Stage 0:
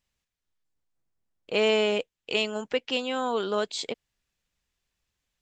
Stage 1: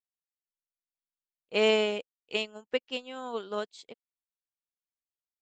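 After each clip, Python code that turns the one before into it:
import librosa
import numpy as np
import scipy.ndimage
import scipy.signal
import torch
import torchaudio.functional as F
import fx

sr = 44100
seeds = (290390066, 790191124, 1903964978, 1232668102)

y = fx.upward_expand(x, sr, threshold_db=-44.0, expansion=2.5)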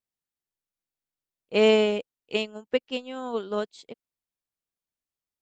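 y = fx.low_shelf(x, sr, hz=480.0, db=8.5)
y = y * librosa.db_to_amplitude(1.0)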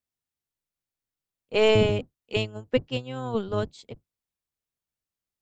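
y = fx.octave_divider(x, sr, octaves=1, level_db=2.0)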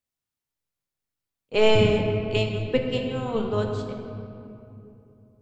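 y = fx.room_shoebox(x, sr, seeds[0], volume_m3=120.0, walls='hard', distance_m=0.31)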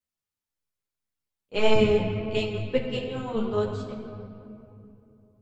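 y = fx.ensemble(x, sr)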